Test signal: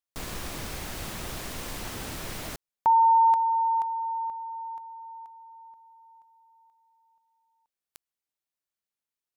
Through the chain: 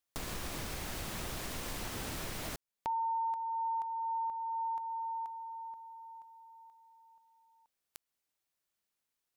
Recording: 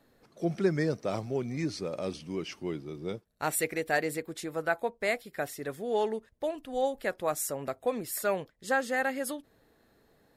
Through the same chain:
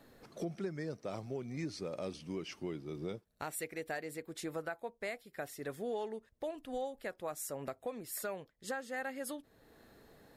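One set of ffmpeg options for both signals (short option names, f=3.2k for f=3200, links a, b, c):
-af "acompressor=threshold=-37dB:ratio=10:attack=1.9:release=669:knee=1:detection=rms,volume=4.5dB"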